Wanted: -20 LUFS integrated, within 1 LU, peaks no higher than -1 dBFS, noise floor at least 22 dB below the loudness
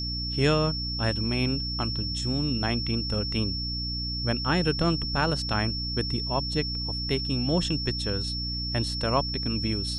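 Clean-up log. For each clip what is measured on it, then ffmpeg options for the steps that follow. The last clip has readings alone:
hum 60 Hz; highest harmonic 300 Hz; hum level -31 dBFS; steady tone 5.4 kHz; tone level -31 dBFS; loudness -27.0 LUFS; peak level -9.0 dBFS; loudness target -20.0 LUFS
-> -af "bandreject=f=60:t=h:w=4,bandreject=f=120:t=h:w=4,bandreject=f=180:t=h:w=4,bandreject=f=240:t=h:w=4,bandreject=f=300:t=h:w=4"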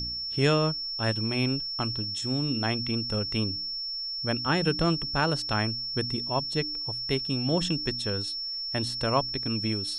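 hum not found; steady tone 5.4 kHz; tone level -31 dBFS
-> -af "bandreject=f=5400:w=30"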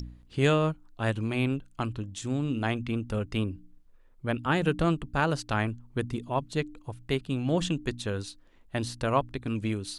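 steady tone not found; loudness -30.0 LUFS; peak level -10.0 dBFS; loudness target -20.0 LUFS
-> -af "volume=3.16,alimiter=limit=0.891:level=0:latency=1"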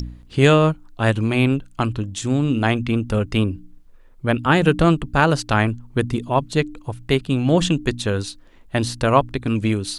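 loudness -20.0 LUFS; peak level -1.0 dBFS; noise floor -47 dBFS

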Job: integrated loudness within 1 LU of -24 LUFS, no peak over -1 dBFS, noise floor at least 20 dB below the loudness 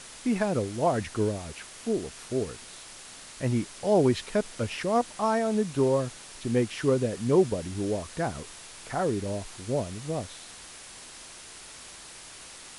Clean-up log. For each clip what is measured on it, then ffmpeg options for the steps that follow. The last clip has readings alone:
noise floor -46 dBFS; noise floor target -49 dBFS; loudness -28.5 LUFS; peak level -10.5 dBFS; loudness target -24.0 LUFS
-> -af "afftdn=nr=6:nf=-46"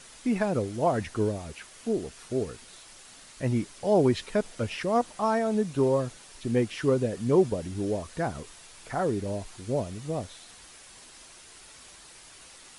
noise floor -51 dBFS; loudness -28.5 LUFS; peak level -10.5 dBFS; loudness target -24.0 LUFS
-> -af "volume=1.68"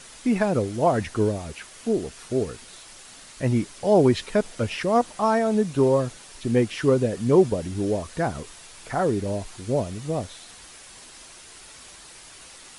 loudness -24.0 LUFS; peak level -6.0 dBFS; noise floor -46 dBFS

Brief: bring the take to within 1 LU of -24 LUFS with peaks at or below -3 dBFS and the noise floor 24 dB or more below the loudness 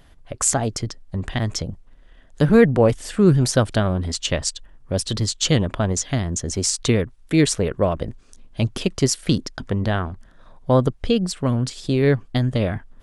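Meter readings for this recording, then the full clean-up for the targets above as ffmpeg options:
loudness -21.0 LUFS; peak level -1.5 dBFS; loudness target -24.0 LUFS
-> -af "volume=0.708"

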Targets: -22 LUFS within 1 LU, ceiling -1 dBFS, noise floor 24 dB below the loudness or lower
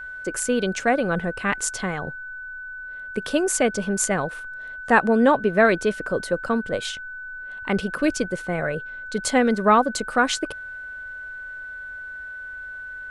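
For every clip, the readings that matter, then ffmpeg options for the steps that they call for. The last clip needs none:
steady tone 1.5 kHz; tone level -33 dBFS; loudness -22.5 LUFS; peak level -4.0 dBFS; loudness target -22.0 LUFS
-> -af "bandreject=f=1500:w=30"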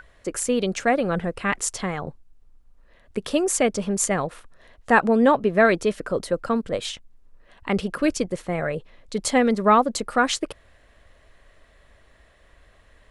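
steady tone not found; loudness -23.0 LUFS; peak level -4.5 dBFS; loudness target -22.0 LUFS
-> -af "volume=1.12"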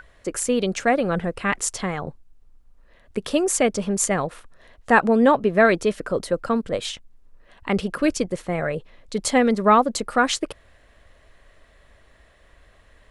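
loudness -22.0 LUFS; peak level -3.5 dBFS; noise floor -55 dBFS

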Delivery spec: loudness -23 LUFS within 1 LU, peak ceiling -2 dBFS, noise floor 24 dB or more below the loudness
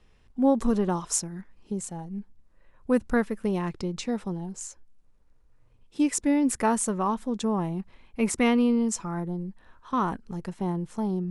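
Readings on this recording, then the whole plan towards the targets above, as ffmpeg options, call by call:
loudness -27.5 LUFS; peak level -10.5 dBFS; loudness target -23.0 LUFS
-> -af "volume=1.68"

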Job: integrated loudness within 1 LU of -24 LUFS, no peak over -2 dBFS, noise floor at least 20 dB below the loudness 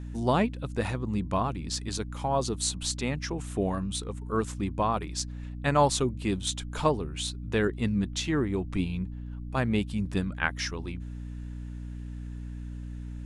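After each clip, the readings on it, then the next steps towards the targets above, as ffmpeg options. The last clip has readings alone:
hum 60 Hz; highest harmonic 300 Hz; hum level -35 dBFS; loudness -30.5 LUFS; peak level -9.0 dBFS; loudness target -24.0 LUFS
-> -af "bandreject=f=60:t=h:w=4,bandreject=f=120:t=h:w=4,bandreject=f=180:t=h:w=4,bandreject=f=240:t=h:w=4,bandreject=f=300:t=h:w=4"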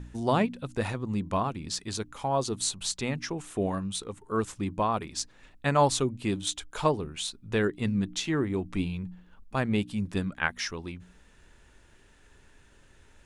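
hum not found; loudness -30.0 LUFS; peak level -9.0 dBFS; loudness target -24.0 LUFS
-> -af "volume=2"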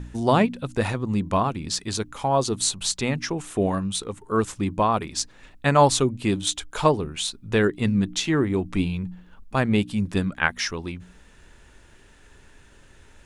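loudness -24.0 LUFS; peak level -3.0 dBFS; noise floor -52 dBFS

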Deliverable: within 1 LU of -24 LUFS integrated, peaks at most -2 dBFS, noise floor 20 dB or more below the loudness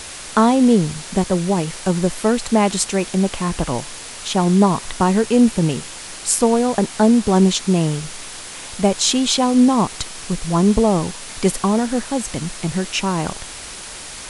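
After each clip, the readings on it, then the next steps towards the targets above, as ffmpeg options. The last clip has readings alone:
noise floor -34 dBFS; noise floor target -38 dBFS; loudness -18.0 LUFS; peak level -2.0 dBFS; loudness target -24.0 LUFS
-> -af "afftdn=nr=6:nf=-34"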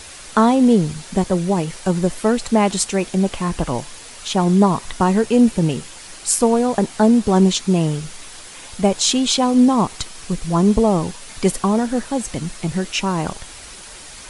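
noise floor -38 dBFS; loudness -18.0 LUFS; peak level -2.0 dBFS; loudness target -24.0 LUFS
-> -af "volume=0.501"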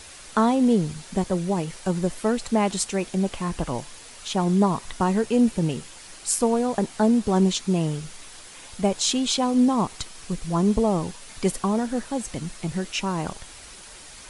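loudness -24.0 LUFS; peak level -8.0 dBFS; noise floor -44 dBFS

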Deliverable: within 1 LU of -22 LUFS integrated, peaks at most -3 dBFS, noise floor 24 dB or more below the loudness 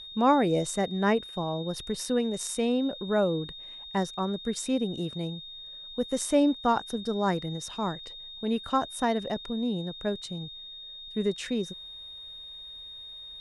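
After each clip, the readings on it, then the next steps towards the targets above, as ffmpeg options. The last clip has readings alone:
steady tone 3.7 kHz; tone level -41 dBFS; loudness -29.0 LUFS; peak level -12.0 dBFS; loudness target -22.0 LUFS
-> -af "bandreject=f=3700:w=30"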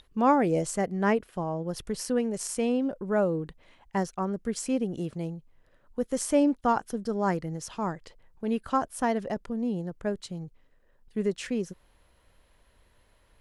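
steady tone not found; loudness -29.5 LUFS; peak level -12.0 dBFS; loudness target -22.0 LUFS
-> -af "volume=2.37"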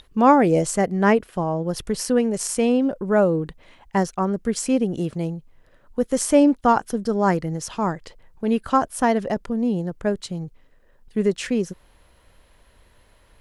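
loudness -22.0 LUFS; peak level -4.5 dBFS; noise floor -56 dBFS

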